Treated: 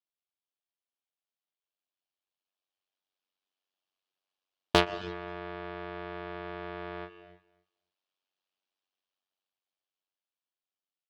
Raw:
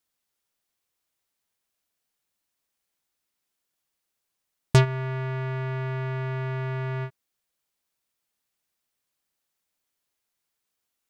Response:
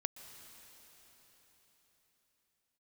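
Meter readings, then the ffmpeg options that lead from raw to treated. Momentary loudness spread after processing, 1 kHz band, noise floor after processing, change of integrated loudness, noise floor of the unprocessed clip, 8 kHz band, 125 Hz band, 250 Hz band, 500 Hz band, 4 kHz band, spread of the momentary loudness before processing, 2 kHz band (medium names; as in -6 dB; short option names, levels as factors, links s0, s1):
14 LU, -0.5 dB, under -85 dBFS, -6.5 dB, -82 dBFS, -7.0 dB, -19.5 dB, -3.5 dB, -3.0 dB, +3.0 dB, 9 LU, -3.0 dB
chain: -filter_complex "[0:a]highpass=410,equalizer=f=490:t=q:w=4:g=-5,equalizer=f=920:t=q:w=4:g=-4,equalizer=f=1400:t=q:w=4:g=-5,equalizer=f=2000:t=q:w=4:g=-9,equalizer=f=3100:t=q:w=4:g=4,lowpass=f=5200:w=0.5412,lowpass=f=5200:w=1.3066,aecho=1:1:267|534:0.0944|0.0179[s0];[1:a]atrim=start_sample=2205,afade=t=out:st=0.39:d=0.01,atrim=end_sample=17640[s1];[s0][s1]afir=irnorm=-1:irlink=0,aeval=exprs='val(0)*sin(2*PI*47*n/s)':c=same,highshelf=f=3500:g=-9,aeval=exprs='0.237*(cos(1*acos(clip(val(0)/0.237,-1,1)))-cos(1*PI/2))+0.0168*(cos(7*acos(clip(val(0)/0.237,-1,1)))-cos(7*PI/2))':c=same,dynaudnorm=f=250:g=21:m=3.76"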